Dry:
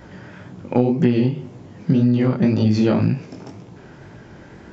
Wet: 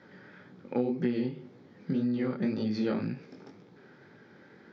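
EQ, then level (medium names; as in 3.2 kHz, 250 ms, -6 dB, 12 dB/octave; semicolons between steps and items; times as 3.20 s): cabinet simulation 250–4700 Hz, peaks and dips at 320 Hz -5 dB, 660 Hz -10 dB, 1 kHz -8 dB, 2.8 kHz -9 dB; -7.5 dB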